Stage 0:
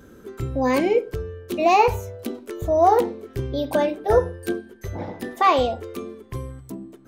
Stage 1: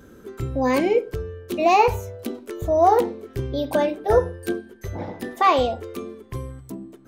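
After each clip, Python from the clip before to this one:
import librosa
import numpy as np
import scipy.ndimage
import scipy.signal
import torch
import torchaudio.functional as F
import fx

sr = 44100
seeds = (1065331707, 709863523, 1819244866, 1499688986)

y = x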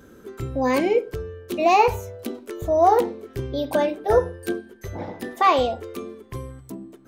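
y = fx.low_shelf(x, sr, hz=180.0, db=-3.5)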